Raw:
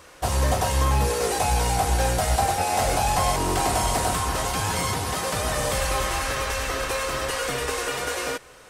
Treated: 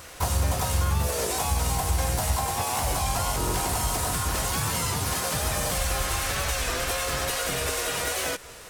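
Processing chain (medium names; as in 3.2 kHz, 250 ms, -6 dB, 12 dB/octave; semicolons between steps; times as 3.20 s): harmony voices +5 st -4 dB; treble shelf 3.4 kHz +7.5 dB; compression, threshold -25 dBFS, peak gain reduction 10 dB; bass shelf 170 Hz +6.5 dB; warped record 33 1/3 rpm, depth 100 cents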